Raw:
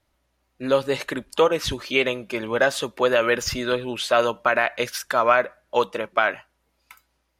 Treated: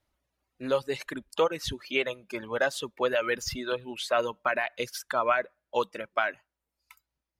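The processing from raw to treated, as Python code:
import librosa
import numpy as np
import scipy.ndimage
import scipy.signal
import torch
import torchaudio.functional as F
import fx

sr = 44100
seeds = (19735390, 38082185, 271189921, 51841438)

y = fx.dereverb_blind(x, sr, rt60_s=1.3)
y = y * librosa.db_to_amplitude(-6.5)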